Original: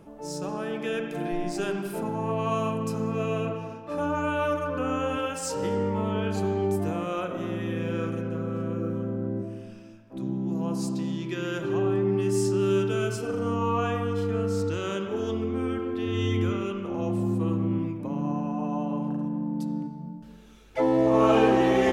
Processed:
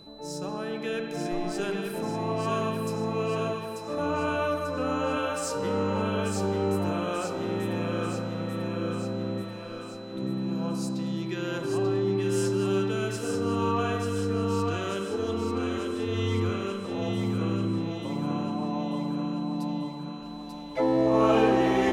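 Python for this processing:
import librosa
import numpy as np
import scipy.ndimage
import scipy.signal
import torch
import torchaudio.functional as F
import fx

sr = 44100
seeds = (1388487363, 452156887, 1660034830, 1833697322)

y = fx.echo_thinned(x, sr, ms=889, feedback_pct=62, hz=420.0, wet_db=-4.5)
y = y + 10.0 ** (-49.0 / 20.0) * np.sin(2.0 * np.pi * 4000.0 * np.arange(len(y)) / sr)
y = F.gain(torch.from_numpy(y), -1.5).numpy()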